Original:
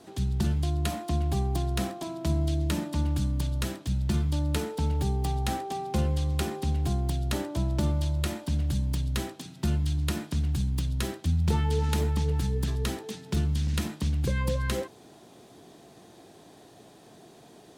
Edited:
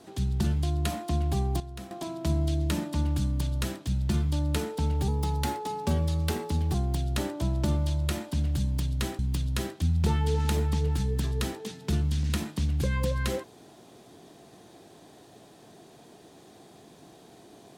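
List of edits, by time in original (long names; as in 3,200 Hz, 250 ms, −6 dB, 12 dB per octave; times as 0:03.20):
0:01.60–0:01.91: clip gain −12 dB
0:05.08–0:06.89: play speed 109%
0:09.34–0:10.63: remove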